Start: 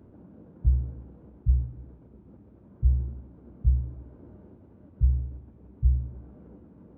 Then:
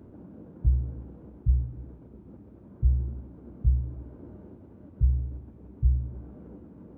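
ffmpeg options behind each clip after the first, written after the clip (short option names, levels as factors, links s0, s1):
-filter_complex "[0:a]equalizer=f=310:w=1.5:g=2,asplit=2[s0][s1];[s1]acompressor=threshold=0.0355:ratio=6,volume=0.794[s2];[s0][s2]amix=inputs=2:normalize=0,volume=0.75"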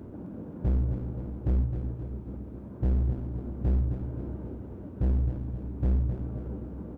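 -af "asoftclip=type=hard:threshold=0.0376,aecho=1:1:263|526|789|1052|1315|1578:0.422|0.215|0.11|0.0559|0.0285|0.0145,volume=2"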